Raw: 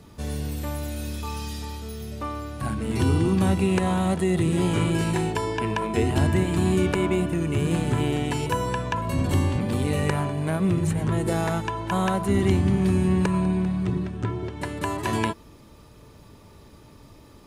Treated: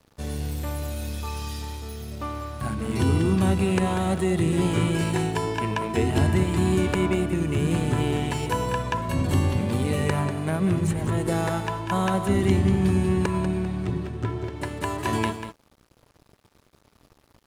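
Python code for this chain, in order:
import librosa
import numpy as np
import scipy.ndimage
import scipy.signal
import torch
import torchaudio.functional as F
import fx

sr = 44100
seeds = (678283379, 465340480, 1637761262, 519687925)

y = x + 10.0 ** (-9.5 / 20.0) * np.pad(x, (int(192 * sr / 1000.0), 0))[:len(x)]
y = np.sign(y) * np.maximum(np.abs(y) - 10.0 ** (-46.0 / 20.0), 0.0)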